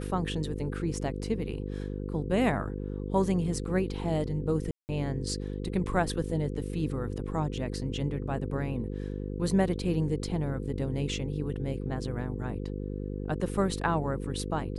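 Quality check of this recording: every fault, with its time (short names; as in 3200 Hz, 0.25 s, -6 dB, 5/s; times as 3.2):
buzz 50 Hz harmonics 10 -35 dBFS
4.71–4.89 gap 0.179 s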